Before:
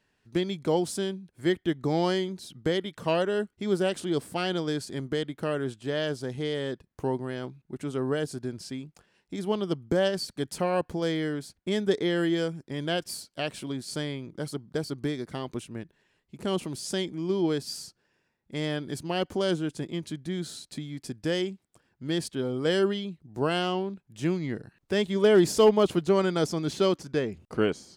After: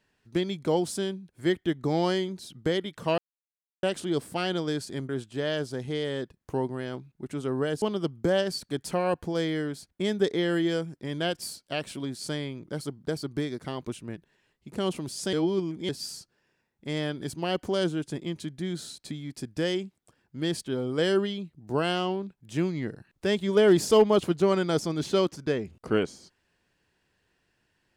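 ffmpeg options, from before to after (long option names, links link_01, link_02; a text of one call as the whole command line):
ffmpeg -i in.wav -filter_complex "[0:a]asplit=7[link_01][link_02][link_03][link_04][link_05][link_06][link_07];[link_01]atrim=end=3.18,asetpts=PTS-STARTPTS,afade=type=out:start_time=3.176:duration=0.004:curve=hsin[link_08];[link_02]atrim=start=3.18:end=3.83,asetpts=PTS-STARTPTS,volume=0[link_09];[link_03]atrim=start=3.83:end=5.092,asetpts=PTS-STARTPTS,afade=type=in:duration=0.004:curve=hsin[link_10];[link_04]atrim=start=5.588:end=8.322[link_11];[link_05]atrim=start=9.488:end=17.002[link_12];[link_06]atrim=start=16.998:end=17.562,asetpts=PTS-STARTPTS,areverse[link_13];[link_07]atrim=start=17.558[link_14];[link_08][link_09][link_10]concat=n=3:v=0:a=1[link_15];[link_15][link_11]acrossfade=duration=0.004:curve1=hsin:curve2=hsin[link_16];[link_16][link_12]acrossfade=duration=0.004:curve1=hsin:curve2=hsin[link_17];[link_17][link_13]acrossfade=duration=0.004:curve1=hsin:curve2=hsin[link_18];[link_18][link_14]acrossfade=duration=0.004:curve1=hsin:curve2=hsin" out.wav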